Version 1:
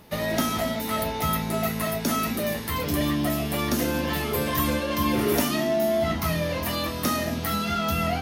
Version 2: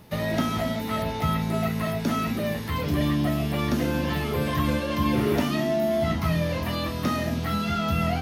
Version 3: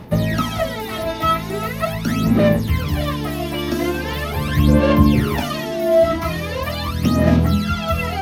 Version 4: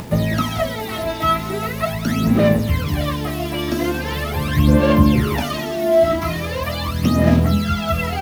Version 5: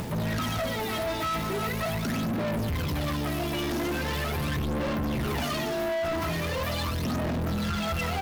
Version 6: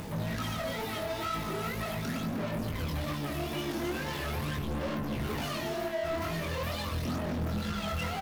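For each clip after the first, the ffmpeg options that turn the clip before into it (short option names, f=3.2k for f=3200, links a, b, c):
-filter_complex "[0:a]acrossover=split=4500[a][b];[b]acompressor=threshold=-42dB:ratio=4:attack=1:release=60[c];[a][c]amix=inputs=2:normalize=0,equalizer=f=120:w=0.97:g=7,volume=-1.5dB"
-af "aphaser=in_gain=1:out_gain=1:delay=3.1:decay=0.73:speed=0.41:type=sinusoidal,volume=2.5dB"
-filter_complex "[0:a]acompressor=mode=upward:threshold=-26dB:ratio=2.5,acrusher=bits=6:mix=0:aa=0.000001,asplit=2[a][b];[b]adelay=192.4,volume=-16dB,highshelf=f=4k:g=-4.33[c];[a][c]amix=inputs=2:normalize=0"
-af "alimiter=limit=-13dB:level=0:latency=1:release=16,asoftclip=type=tanh:threshold=-26.5dB"
-af "flanger=delay=19:depth=7.1:speed=2.2,aecho=1:1:278:0.211,volume=-2dB"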